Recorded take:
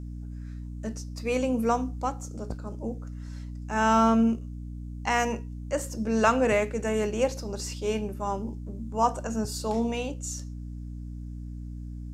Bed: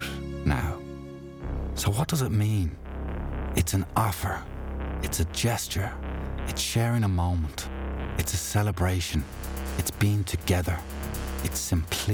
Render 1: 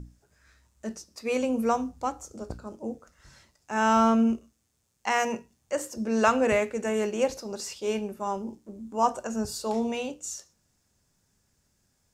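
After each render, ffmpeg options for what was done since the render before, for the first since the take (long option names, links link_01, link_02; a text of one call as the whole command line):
ffmpeg -i in.wav -af "bandreject=frequency=60:width_type=h:width=6,bandreject=frequency=120:width_type=h:width=6,bandreject=frequency=180:width_type=h:width=6,bandreject=frequency=240:width_type=h:width=6,bandreject=frequency=300:width_type=h:width=6" out.wav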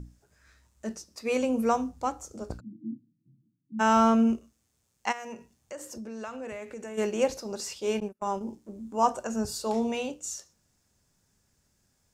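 ffmpeg -i in.wav -filter_complex "[0:a]asplit=3[link_01][link_02][link_03];[link_01]afade=type=out:start_time=2.59:duration=0.02[link_04];[link_02]asuperpass=centerf=190:order=20:qfactor=0.88,afade=type=in:start_time=2.59:duration=0.02,afade=type=out:start_time=3.79:duration=0.02[link_05];[link_03]afade=type=in:start_time=3.79:duration=0.02[link_06];[link_04][link_05][link_06]amix=inputs=3:normalize=0,asplit=3[link_07][link_08][link_09];[link_07]afade=type=out:start_time=5.11:duration=0.02[link_10];[link_08]acompressor=threshold=-38dB:ratio=4:attack=3.2:release=140:knee=1:detection=peak,afade=type=in:start_time=5.11:duration=0.02,afade=type=out:start_time=6.97:duration=0.02[link_11];[link_09]afade=type=in:start_time=6.97:duration=0.02[link_12];[link_10][link_11][link_12]amix=inputs=3:normalize=0,asettb=1/sr,asplit=3[link_13][link_14][link_15];[link_13]atrim=end=8.004[link_16];[link_14]atrim=start=8:end=8.41,asetpts=PTS-STARTPTS,afade=type=in:duration=0.004:curve=qsin,afade=type=out:start_time=0.406:duration=0.004:curve=qsin,agate=range=-33dB:threshold=-35dB:ratio=16:release=100:detection=peak[link_17];[link_15]atrim=start=8.406[link_18];[link_16][link_17]acrossfade=duration=0.004:curve1=hsin:curve2=qsin[link_19];[link_19][link_18]acrossfade=duration=0.004:curve1=qsin:curve2=hsin" out.wav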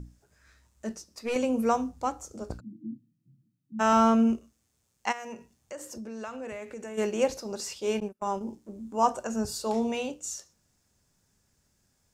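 ffmpeg -i in.wav -filter_complex "[0:a]asettb=1/sr,asplit=3[link_01][link_02][link_03];[link_01]atrim=end=0.914[link_04];[link_02]atrim=start=0.91:end=1.36,asetpts=PTS-STARTPTS,afade=type=in:duration=0.004:curve=qsin,afade=type=out:start_time=0.446:duration=0.004:curve=qsin,aeval=exprs='(tanh(14.1*val(0)+0.35)-tanh(0.35))/14.1':channel_layout=same[link_05];[link_03]atrim=start=1.356[link_06];[link_04][link_05]acrossfade=duration=0.004:curve1=hsin:curve2=qsin[link_07];[link_07][link_06]acrossfade=duration=0.004:curve1=qsin:curve2=hsin,asettb=1/sr,asplit=3[link_08][link_09][link_10];[link_08]atrim=end=2.864[link_11];[link_09]atrim=start=2.86:end=3.93,asetpts=PTS-STARTPTS,afade=type=in:duration=0.004:curve=qsin,afade=type=out:start_time=1.066:duration=0.004:curve=qsin,aecho=1:1:1.6:0.38,atrim=end_sample=47187[link_12];[link_10]atrim=start=3.926[link_13];[link_11][link_12]acrossfade=duration=0.004:curve1=hsin:curve2=qsin[link_14];[link_14][link_13]acrossfade=duration=0.004:curve1=qsin:curve2=hsin" out.wav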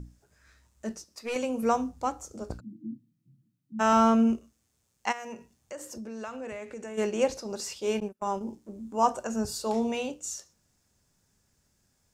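ffmpeg -i in.wav -filter_complex "[0:a]asettb=1/sr,asplit=3[link_01][link_02][link_03];[link_01]atrim=end=1.044[link_04];[link_02]atrim=start=1.04:end=1.63,asetpts=PTS-STARTPTS,afade=type=in:duration=0.004:curve=qsin,afade=type=out:start_time=0.586:duration=0.004:curve=qsin,lowshelf=frequency=410:gain=-6.5[link_05];[link_03]atrim=start=1.626[link_06];[link_04][link_05]acrossfade=duration=0.004:curve1=hsin:curve2=qsin[link_07];[link_07][link_06]acrossfade=duration=0.004:curve1=qsin:curve2=hsin,asettb=1/sr,asplit=3[link_08][link_09][link_10];[link_08]atrim=end=6.414[link_11];[link_09]atrim=start=6.41:end=7.5,asetpts=PTS-STARTPTS,afade=type=in:duration=0.004:curve=qsin,afade=type=out:start_time=1.086:duration=0.004:curve=qsin,lowpass=11000[link_12];[link_10]atrim=start=7.496[link_13];[link_11][link_12]acrossfade=duration=0.004:curve1=hsin:curve2=qsin[link_14];[link_14][link_13]acrossfade=duration=0.004:curve1=qsin:curve2=hsin" out.wav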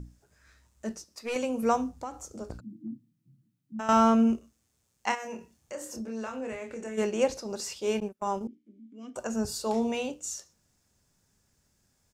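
ffmpeg -i in.wav -filter_complex "[0:a]asettb=1/sr,asplit=3[link_01][link_02][link_03];[link_01]atrim=end=1.974[link_04];[link_02]atrim=start=1.97:end=3.89,asetpts=PTS-STARTPTS,afade=type=in:duration=0.004:curve=qsin,afade=type=out:start_time=1.916:duration=0.004:curve=qsin,acompressor=threshold=-32dB:ratio=6:attack=3.2:release=140:knee=1:detection=peak[link_05];[link_03]atrim=start=3.886[link_06];[link_04][link_05]acrossfade=duration=0.004:curve1=hsin:curve2=qsin[link_07];[link_07][link_06]acrossfade=duration=0.004:curve1=qsin:curve2=hsin,asplit=3[link_08][link_09][link_10];[link_08]afade=type=out:start_time=5.11:duration=0.02[link_11];[link_09]asplit=2[link_12][link_13];[link_13]adelay=27,volume=-4dB[link_14];[link_12][link_14]amix=inputs=2:normalize=0,afade=type=in:start_time=5.11:duration=0.02,afade=type=out:start_time=7.01:duration=0.02[link_15];[link_10]afade=type=in:start_time=7.01:duration=0.02[link_16];[link_11][link_15][link_16]amix=inputs=3:normalize=0,asettb=1/sr,asplit=3[link_17][link_18][link_19];[link_17]atrim=end=8.474[link_20];[link_18]atrim=start=8.47:end=9.16,asetpts=PTS-STARTPTS,afade=type=in:duration=0.004:curve=qsin,afade=type=out:start_time=0.686:duration=0.004:curve=qsin,asplit=3[link_21][link_22][link_23];[link_21]bandpass=frequency=270:width_type=q:width=8,volume=0dB[link_24];[link_22]bandpass=frequency=2290:width_type=q:width=8,volume=-6dB[link_25];[link_23]bandpass=frequency=3010:width_type=q:width=8,volume=-9dB[link_26];[link_24][link_25][link_26]amix=inputs=3:normalize=0[link_27];[link_19]atrim=start=9.156[link_28];[link_20][link_27]acrossfade=duration=0.004:curve1=hsin:curve2=qsin[link_29];[link_29][link_28]acrossfade=duration=0.004:curve1=qsin:curve2=hsin" out.wav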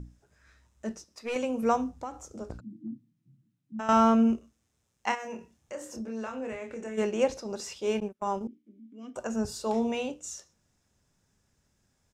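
ffmpeg -i in.wav -af "highshelf=frequency=9200:gain=-11.5,bandreject=frequency=4500:width=13" out.wav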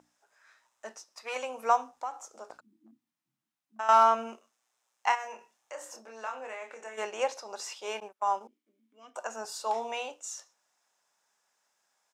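ffmpeg -i in.wav -af "highpass=frequency=830:width_type=q:width=1.6,asoftclip=type=hard:threshold=-11dB" out.wav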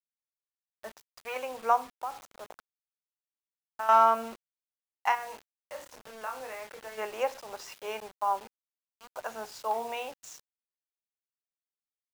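ffmpeg -i in.wav -filter_complex "[0:a]acrossover=split=170|2500[link_01][link_02][link_03];[link_03]adynamicsmooth=sensitivity=6.5:basefreq=3700[link_04];[link_01][link_02][link_04]amix=inputs=3:normalize=0,acrusher=bits=7:mix=0:aa=0.000001" out.wav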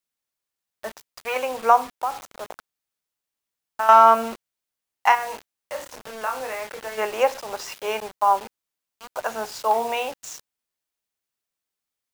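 ffmpeg -i in.wav -af "volume=10dB,alimiter=limit=-3dB:level=0:latency=1" out.wav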